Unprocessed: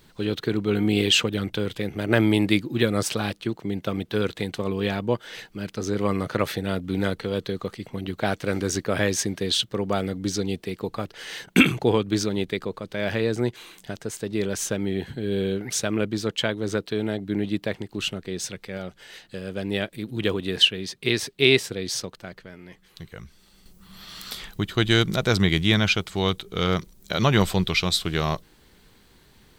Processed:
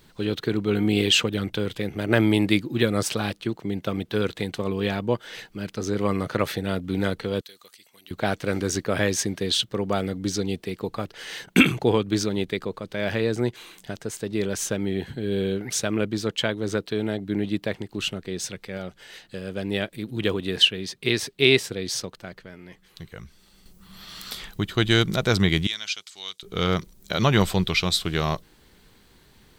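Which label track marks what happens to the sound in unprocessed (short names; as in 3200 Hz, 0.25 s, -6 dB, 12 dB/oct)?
7.410000	8.110000	differentiator
25.670000	26.430000	band-pass 6000 Hz, Q 1.2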